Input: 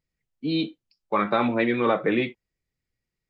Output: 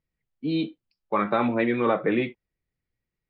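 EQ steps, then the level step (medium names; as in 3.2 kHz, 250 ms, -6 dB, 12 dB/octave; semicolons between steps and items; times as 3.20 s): distance through air 210 m; 0.0 dB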